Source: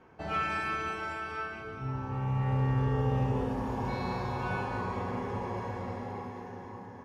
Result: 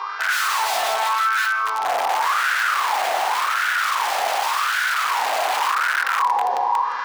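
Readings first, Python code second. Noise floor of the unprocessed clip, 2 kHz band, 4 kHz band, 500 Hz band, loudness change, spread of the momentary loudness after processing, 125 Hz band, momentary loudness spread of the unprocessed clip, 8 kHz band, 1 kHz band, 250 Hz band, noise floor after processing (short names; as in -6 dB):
-46 dBFS, +19.0 dB, +23.5 dB, +7.0 dB, +13.0 dB, 2 LU, under -35 dB, 11 LU, n/a, +17.0 dB, under -15 dB, -25 dBFS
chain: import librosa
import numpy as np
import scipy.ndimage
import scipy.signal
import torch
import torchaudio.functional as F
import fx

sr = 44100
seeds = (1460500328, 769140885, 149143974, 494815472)

y = fx.cvsd(x, sr, bps=32000)
y = fx.graphic_eq_31(y, sr, hz=(160, 500, 1000), db=(-11, 5, 10))
y = (np.mod(10.0 ** (30.0 / 20.0) * y + 1.0, 2.0) - 1.0) / 10.0 ** (30.0 / 20.0)
y = fx.dmg_buzz(y, sr, base_hz=400.0, harmonics=14, level_db=-57.0, tilt_db=-4, odd_only=False)
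y = fx.rider(y, sr, range_db=4, speed_s=2.0)
y = fx.echo_feedback(y, sr, ms=166, feedback_pct=40, wet_db=-22.5)
y = fx.filter_lfo_highpass(y, sr, shape='sine', hz=0.88, low_hz=710.0, high_hz=1500.0, q=7.1)
y = scipy.signal.sosfilt(scipy.signal.butter(2, 82.0, 'highpass', fs=sr, output='sos'), y)
y = fx.high_shelf(y, sr, hz=4800.0, db=-5.0)
y = fx.env_flatten(y, sr, amount_pct=50)
y = F.gain(torch.from_numpy(y), 5.5).numpy()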